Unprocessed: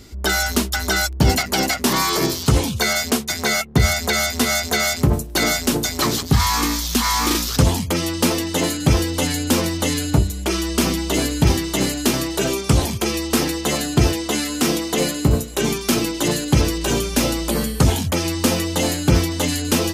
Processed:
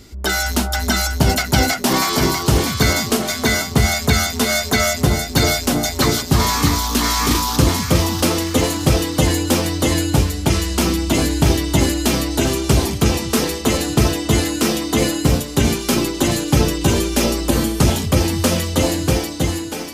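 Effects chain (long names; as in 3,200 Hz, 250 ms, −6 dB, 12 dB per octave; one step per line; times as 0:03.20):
fade-out on the ending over 1.20 s
delay that swaps between a low-pass and a high-pass 322 ms, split 1,100 Hz, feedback 68%, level −2 dB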